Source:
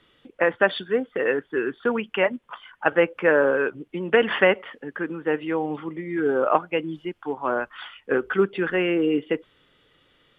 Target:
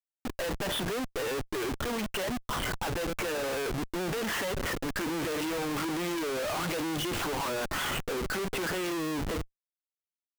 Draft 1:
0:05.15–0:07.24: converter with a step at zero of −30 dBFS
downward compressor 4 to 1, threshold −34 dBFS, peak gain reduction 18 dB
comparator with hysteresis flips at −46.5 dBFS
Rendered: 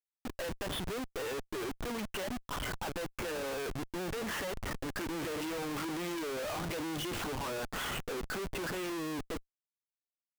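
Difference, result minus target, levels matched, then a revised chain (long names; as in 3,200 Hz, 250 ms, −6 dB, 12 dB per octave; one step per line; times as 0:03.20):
downward compressor: peak gain reduction +5 dB
0:05.15–0:07.24: converter with a step at zero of −30 dBFS
downward compressor 4 to 1, threshold −27 dBFS, peak gain reduction 12.5 dB
comparator with hysteresis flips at −46.5 dBFS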